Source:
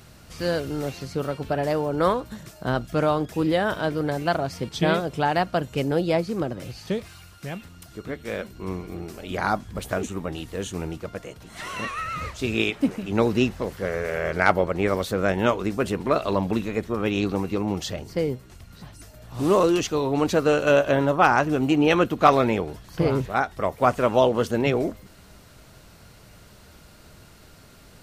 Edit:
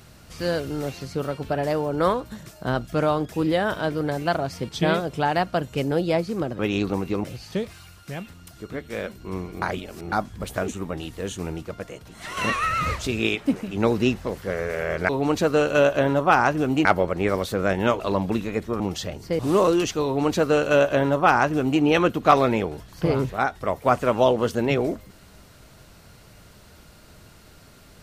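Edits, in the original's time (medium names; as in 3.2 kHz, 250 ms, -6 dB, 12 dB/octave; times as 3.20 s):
8.97–9.47 s: reverse
11.72–12.42 s: gain +6.5 dB
15.59–16.21 s: delete
17.01–17.66 s: move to 6.59 s
18.25–19.35 s: delete
20.01–21.77 s: copy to 14.44 s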